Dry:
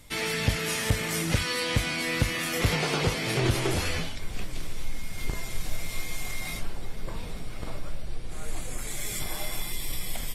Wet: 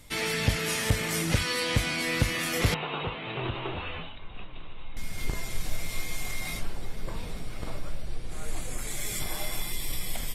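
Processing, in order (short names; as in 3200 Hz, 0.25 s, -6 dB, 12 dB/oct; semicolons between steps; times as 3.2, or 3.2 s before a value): 2.74–4.97 rippled Chebyshev low-pass 3900 Hz, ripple 9 dB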